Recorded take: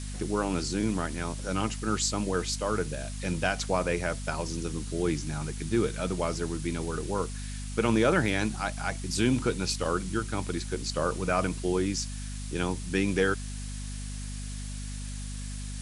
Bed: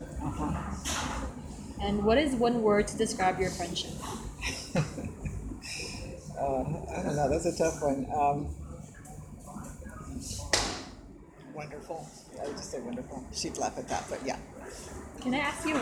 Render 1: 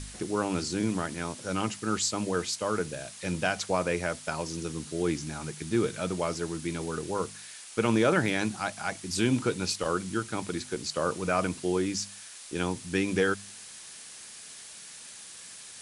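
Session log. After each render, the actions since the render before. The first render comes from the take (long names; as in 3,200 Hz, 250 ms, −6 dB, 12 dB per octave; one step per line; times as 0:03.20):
hum removal 50 Hz, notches 5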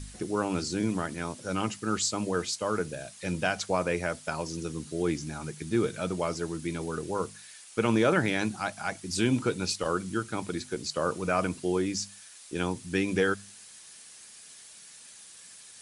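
broadband denoise 6 dB, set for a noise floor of −46 dBFS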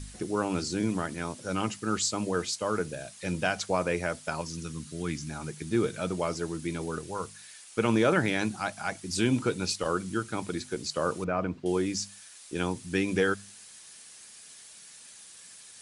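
0:04.41–0:05.30: flat-topped bell 510 Hz −8.5 dB
0:06.98–0:07.40: parametric band 320 Hz −7 dB 2.1 octaves
0:11.24–0:11.66: head-to-tape spacing loss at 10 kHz 33 dB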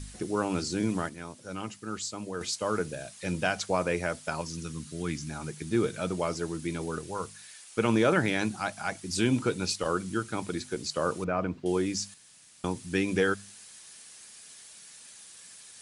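0:01.09–0:02.41: clip gain −7 dB
0:12.14–0:12.64: fill with room tone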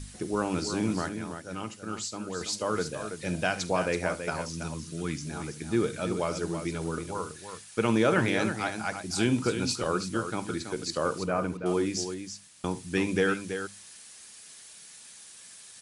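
multi-tap delay 49/73/329 ms −18/−18/−8.5 dB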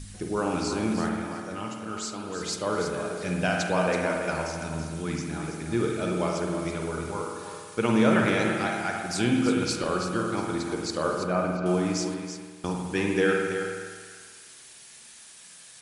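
echo through a band-pass that steps 173 ms, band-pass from 260 Hz, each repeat 1.4 octaves, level −10.5 dB
spring reverb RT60 1.5 s, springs 50 ms, chirp 75 ms, DRR 1 dB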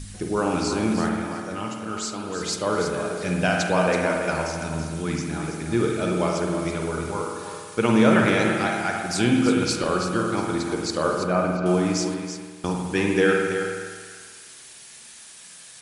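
level +4 dB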